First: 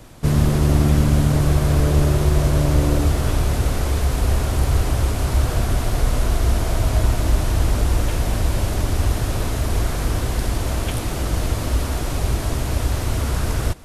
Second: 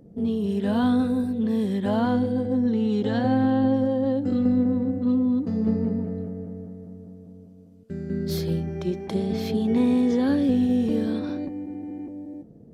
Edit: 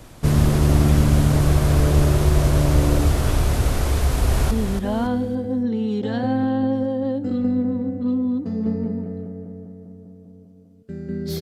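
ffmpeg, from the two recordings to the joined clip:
ffmpeg -i cue0.wav -i cue1.wav -filter_complex "[0:a]apad=whole_dur=11.41,atrim=end=11.41,atrim=end=4.512[link_01];[1:a]atrim=start=1.518:end=8.42[link_02];[link_01][link_02]acrossfade=duration=0.004:curve1=hsin:curve2=hsin,asplit=2[link_03][link_04];[link_04]afade=type=in:start_time=4.04:duration=0.01,afade=type=out:start_time=4.51:duration=0.01,aecho=0:1:280|560|840|1120:0.473151|0.165603|0.057961|0.0202864[link_05];[link_03][link_05]amix=inputs=2:normalize=0" out.wav

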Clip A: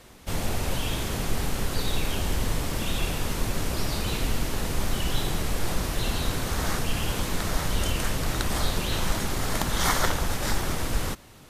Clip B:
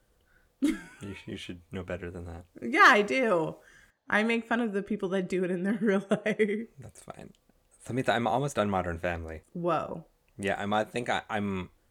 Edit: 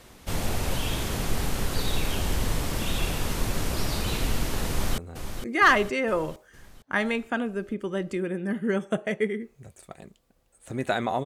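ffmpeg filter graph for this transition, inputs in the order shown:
ffmpeg -i cue0.wav -i cue1.wav -filter_complex "[0:a]apad=whole_dur=11.25,atrim=end=11.25,atrim=end=4.982[link_01];[1:a]atrim=start=2.168:end=8.44[link_02];[link_01][link_02]acrossfade=duration=0.004:curve1=hsin:curve2=hsin,asplit=2[link_03][link_04];[link_04]afade=type=in:start_time=4.69:duration=0.01,afade=type=out:start_time=4.98:duration=0.01,aecho=0:1:460|920|1380|1840|2300|2760|3220:0.375837|0.206711|0.113691|0.0625299|0.0343915|0.0189153|0.0104034[link_05];[link_03][link_05]amix=inputs=2:normalize=0" out.wav

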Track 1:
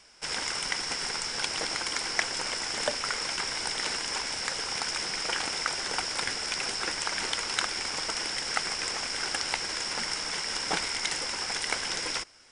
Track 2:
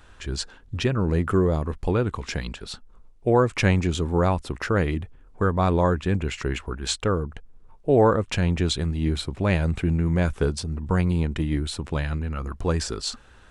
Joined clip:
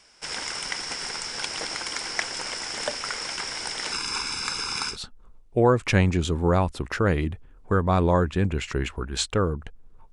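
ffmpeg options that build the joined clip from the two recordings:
ffmpeg -i cue0.wav -i cue1.wav -filter_complex "[0:a]asettb=1/sr,asplit=3[link_01][link_02][link_03];[link_01]atrim=end=3.924[link_04];[link_02]atrim=start=3.92:end=4.97,asetpts=PTS-STARTPTS,afade=type=in:duration=0.004:curve=qsin,afade=type=out:start_time=1.046:duration=0.004:curve=qsin,aecho=1:1:0.8:0.92,atrim=end_sample=46305[link_05];[link_03]atrim=start=4.966[link_06];[link_04][link_05]acrossfade=duration=0.004:curve1=hsin:curve2=qsin[link_07];[link_07][link_06]acrossfade=duration=0.004:curve1=qsin:curve2=hsin,apad=whole_dur=10.12,atrim=end=10.12,atrim=end=4.97,asetpts=PTS-STARTPTS[link_08];[1:a]atrim=start=2.57:end=7.82,asetpts=PTS-STARTPTS[link_09];[link_08][link_09]acrossfade=duration=0.1:curve1=tri:curve2=tri" out.wav

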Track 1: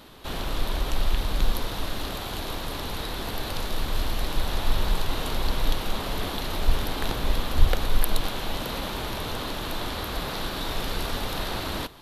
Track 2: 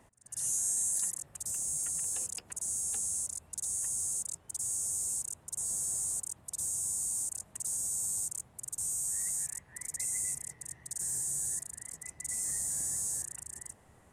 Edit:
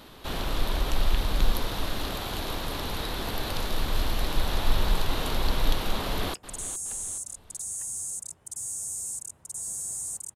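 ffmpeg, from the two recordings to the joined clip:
ffmpeg -i cue0.wav -i cue1.wav -filter_complex "[0:a]apad=whole_dur=10.35,atrim=end=10.35,atrim=end=6.342[link_01];[1:a]atrim=start=2.368:end=6.38[link_02];[link_01][link_02]acrossfade=duration=0.004:curve1=hsin:curve2=hsin,asplit=2[link_03][link_04];[link_04]afade=type=in:start_time=6.01:duration=0.01,afade=type=out:start_time=6.34:duration=0.01,aecho=0:1:420|840|1260|1680:0.211349|0.0845396|0.0338158|0.0135263[link_05];[link_03][link_05]amix=inputs=2:normalize=0" out.wav

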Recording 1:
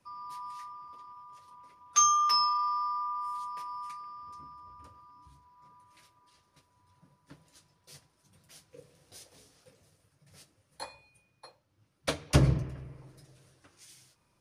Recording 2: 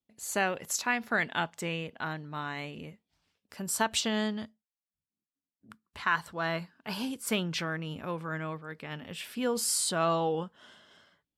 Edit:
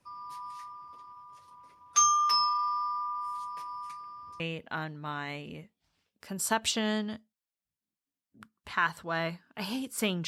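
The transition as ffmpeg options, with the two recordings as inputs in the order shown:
ffmpeg -i cue0.wav -i cue1.wav -filter_complex "[0:a]apad=whole_dur=10.27,atrim=end=10.27,atrim=end=4.402[link_01];[1:a]atrim=start=1.688:end=7.56[link_02];[link_01][link_02]acrossfade=duration=0.004:curve1=hsin:curve2=hsin" out.wav

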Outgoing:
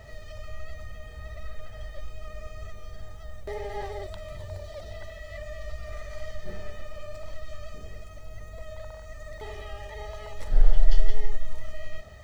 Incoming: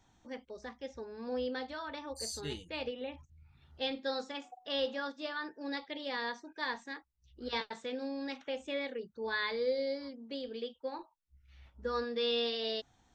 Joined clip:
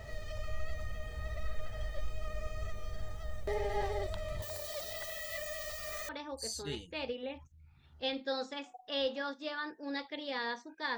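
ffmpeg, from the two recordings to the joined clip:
ffmpeg -i cue0.wav -i cue1.wav -filter_complex "[0:a]asettb=1/sr,asplit=3[link_01][link_02][link_03];[link_01]atrim=end=4.424[link_04];[link_02]atrim=start=4.42:end=6.09,asetpts=PTS-STARTPTS,afade=type=in:duration=0.004:curve=qsin,afade=type=out:start_time=1.666:duration=0.004:curve=qsin,aemphasis=mode=production:type=riaa[link_05];[link_03]atrim=start=6.086[link_06];[link_04][link_05]acrossfade=duration=0.004:curve1=hsin:curve2=qsin[link_07];[link_07][link_06]acrossfade=duration=0.004:curve1=qsin:curve2=hsin,apad=whole_dur=10.97,atrim=end=10.97,atrim=end=6.092[link_08];[1:a]atrim=start=1.868:end=6.75[link_09];[link_08][link_09]acrossfade=duration=0.004:curve1=hsin:curve2=hsin" out.wav

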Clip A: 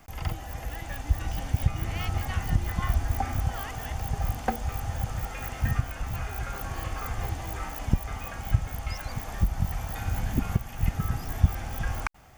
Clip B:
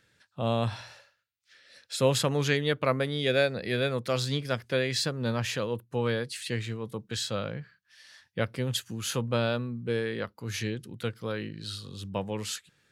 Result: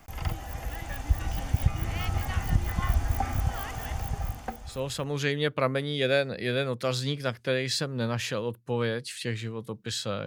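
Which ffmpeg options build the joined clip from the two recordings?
ffmpeg -i cue0.wav -i cue1.wav -filter_complex "[0:a]apad=whole_dur=10.26,atrim=end=10.26,atrim=end=5.4,asetpts=PTS-STARTPTS[link_01];[1:a]atrim=start=1.21:end=7.51,asetpts=PTS-STARTPTS[link_02];[link_01][link_02]acrossfade=duration=1.44:curve1=qua:curve2=qua" out.wav

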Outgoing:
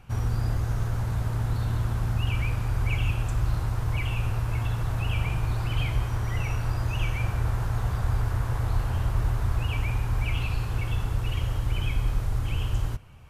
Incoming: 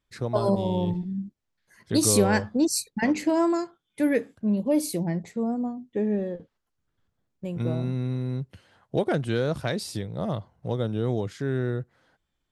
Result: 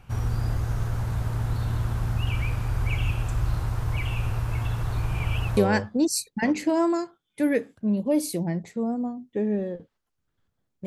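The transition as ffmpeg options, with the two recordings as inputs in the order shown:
ffmpeg -i cue0.wav -i cue1.wav -filter_complex "[0:a]apad=whole_dur=10.86,atrim=end=10.86,asplit=2[link_01][link_02];[link_01]atrim=end=4.922[link_03];[link_02]atrim=start=4.918:end=5.572,asetpts=PTS-STARTPTS,areverse[link_04];[1:a]atrim=start=2.168:end=7.46[link_05];[link_03][link_04]acrossfade=duration=0.004:curve1=hsin:curve2=hsin[link_06];[link_06][link_05]acrossfade=duration=0.004:curve1=hsin:curve2=hsin" out.wav

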